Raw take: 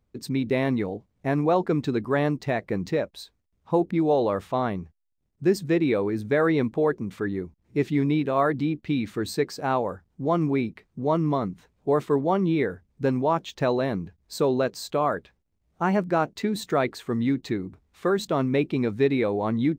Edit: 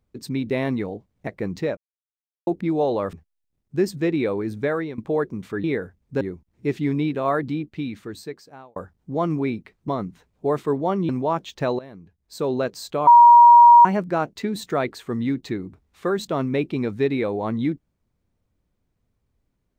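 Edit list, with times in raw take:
0:01.27–0:02.57: remove
0:03.07–0:03.77: silence
0:04.43–0:04.81: remove
0:06.30–0:06.66: fade out, to −17.5 dB
0:08.50–0:09.87: fade out
0:10.99–0:11.31: remove
0:12.52–0:13.09: move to 0:07.32
0:13.79–0:14.54: fade in quadratic, from −16 dB
0:15.07–0:15.85: beep over 951 Hz −6 dBFS

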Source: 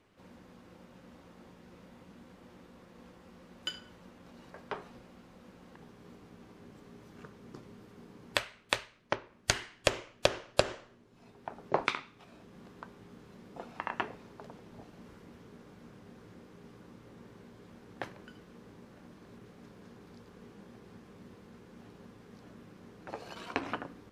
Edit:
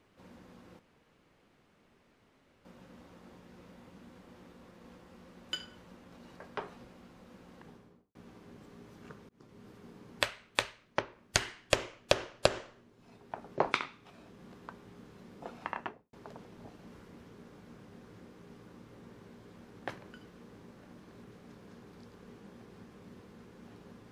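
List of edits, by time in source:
0:00.79: splice in room tone 1.86 s
0:05.79–0:06.29: fade out and dull
0:07.43–0:07.83: fade in
0:13.79–0:14.27: fade out and dull

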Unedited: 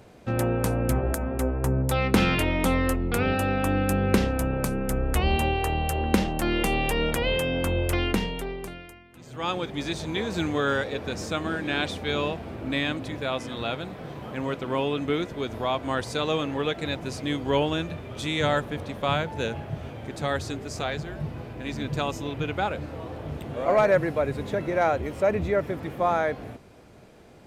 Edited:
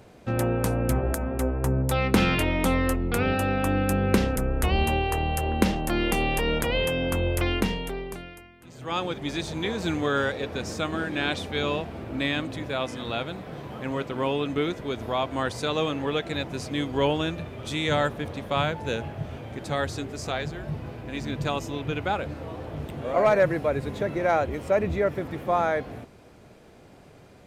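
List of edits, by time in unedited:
0:04.36–0:04.88: remove

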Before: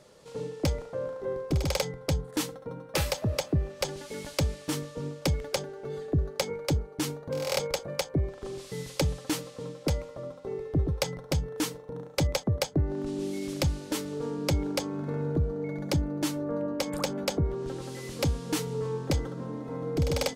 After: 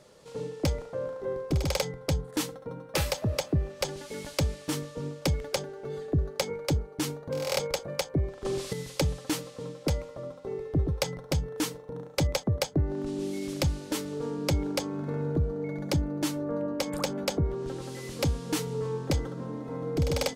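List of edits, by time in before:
0:08.45–0:08.73: clip gain +7.5 dB

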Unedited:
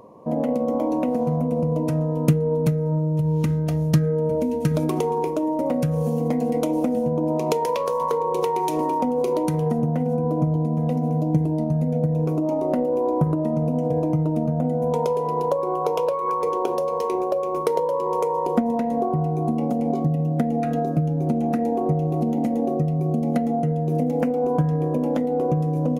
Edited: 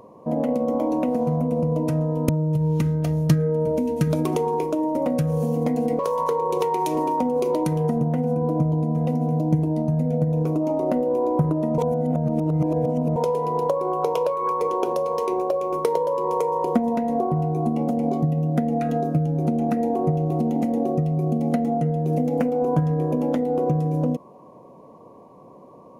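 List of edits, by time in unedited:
0:02.29–0:02.93: remove
0:06.63–0:07.81: remove
0:13.60–0:14.98: reverse

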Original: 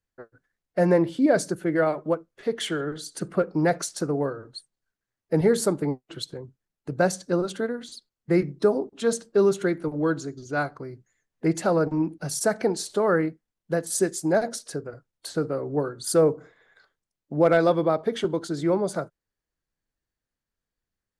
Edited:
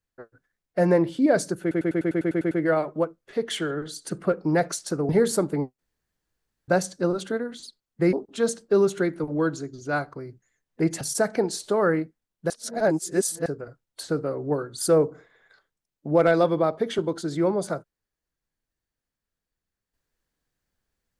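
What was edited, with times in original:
0:01.61: stutter 0.10 s, 10 plays
0:04.19–0:05.38: remove
0:06.08–0:06.97: fill with room tone
0:08.42–0:08.77: remove
0:11.65–0:12.27: remove
0:13.76–0:14.72: reverse

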